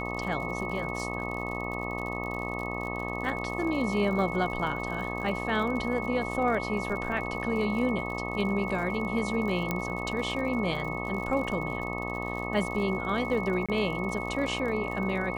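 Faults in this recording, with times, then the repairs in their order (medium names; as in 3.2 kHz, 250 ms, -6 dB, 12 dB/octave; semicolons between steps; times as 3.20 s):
buzz 60 Hz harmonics 21 -35 dBFS
crackle 60 per s -36 dBFS
whine 2.2 kHz -36 dBFS
9.71 s: pop -14 dBFS
13.66–13.69 s: dropout 26 ms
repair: de-click; band-stop 2.2 kHz, Q 30; de-hum 60 Hz, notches 21; interpolate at 13.66 s, 26 ms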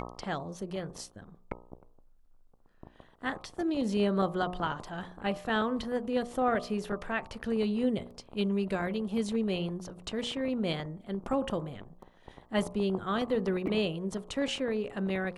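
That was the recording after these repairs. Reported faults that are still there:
nothing left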